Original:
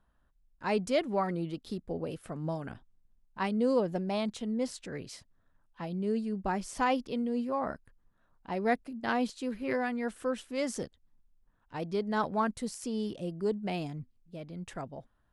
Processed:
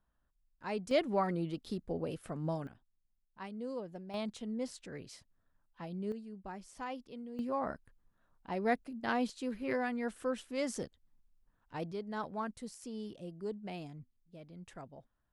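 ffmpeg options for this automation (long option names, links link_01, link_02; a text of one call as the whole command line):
ffmpeg -i in.wav -af "asetnsamples=nb_out_samples=441:pad=0,asendcmd='0.91 volume volume -1.5dB;2.67 volume volume -13.5dB;4.14 volume volume -6dB;6.12 volume volume -13.5dB;7.39 volume volume -3dB;11.92 volume volume -9dB',volume=-8dB" out.wav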